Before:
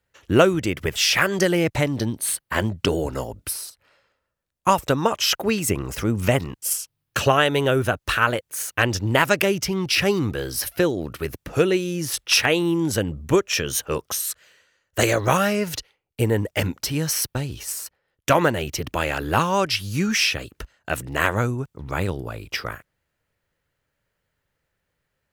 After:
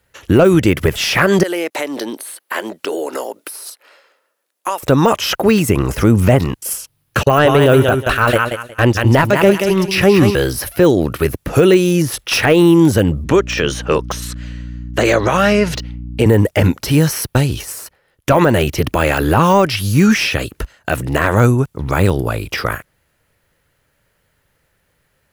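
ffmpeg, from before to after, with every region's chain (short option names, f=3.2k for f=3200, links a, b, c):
-filter_complex "[0:a]asettb=1/sr,asplit=3[a][b][c];[a]atrim=end=1.434[d];[b]atrim=start=1.43:end=4.83,asetpts=PTS-STARTPTS,afade=t=in:d=0.004:c=qsin,afade=t=out:st=3.396:d=0.004:c=qsin,highpass=f=320:w=0.5412,highpass=f=320:w=1.3066,acompressor=threshold=-33dB:ratio=3:attack=3.2:release=140:knee=1:detection=peak[e];[c]atrim=start=4.826[f];[d][e]acrossfade=d=0.004:c1=hsin:c2=qsin[g];[g][f]acrossfade=d=0.004:c1=qsin:c2=hsin,asettb=1/sr,asplit=3[h][i][j];[h]atrim=end=7.234[k];[i]atrim=start=7.23:end=10.35,asetpts=PTS-STARTPTS,afade=t=in:d=0.004:c=qsin,afade=t=out:st=3.116:d=0.004:c=qsin,agate=range=-39dB:threshold=-24dB:ratio=16:release=100:detection=peak,aecho=1:1:181|362|543:0.355|0.071|0.0142,atrim=end_sample=137592[l];[j]atrim=start=10.346[m];[k][l]acrossfade=d=0.004:c1=hsin:c2=qsin[n];[n][m]acrossfade=d=0.004:c1=qsin:c2=hsin,asettb=1/sr,asplit=3[o][p][q];[o]atrim=end=13.244[r];[p]atrim=start=13.24:end=16.26,asetpts=PTS-STARTPTS,afade=t=in:d=0.004:c=qsin,afade=t=out:st=3.016:d=0.004:c=qsin,highpass=150,lowpass=5.6k,acompressor=threshold=-22dB:ratio=2:attack=3.2:release=140:knee=1:detection=peak,aeval=exprs='val(0)+0.0112*(sin(2*PI*60*n/s)+sin(2*PI*2*60*n/s)/2+sin(2*PI*3*60*n/s)/3+sin(2*PI*4*60*n/s)/4+sin(2*PI*5*60*n/s)/5)':c=same[s];[q]atrim=start=16.256[t];[r][s]acrossfade=d=0.004:c1=hsin:c2=qsin[u];[u][t]acrossfade=d=0.004:c1=qsin:c2=hsin,deesser=0.85,equalizer=f=11k:t=o:w=0.31:g=7,alimiter=level_in=14dB:limit=-1dB:release=50:level=0:latency=1,volume=-1dB"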